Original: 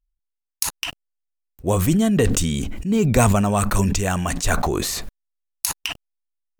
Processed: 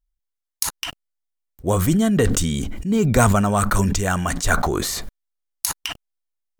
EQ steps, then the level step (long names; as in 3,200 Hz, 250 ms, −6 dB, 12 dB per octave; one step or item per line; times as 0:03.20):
notch filter 2,600 Hz, Q 9.8
dynamic equaliser 1,400 Hz, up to +6 dB, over −40 dBFS, Q 3
0.0 dB